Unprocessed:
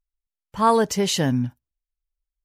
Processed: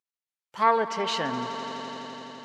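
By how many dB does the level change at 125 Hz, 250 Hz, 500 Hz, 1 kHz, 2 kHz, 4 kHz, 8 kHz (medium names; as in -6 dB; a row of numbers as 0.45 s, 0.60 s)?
-17.0 dB, -11.5 dB, -5.5 dB, -1.5 dB, +1.0 dB, -4.0 dB, -14.0 dB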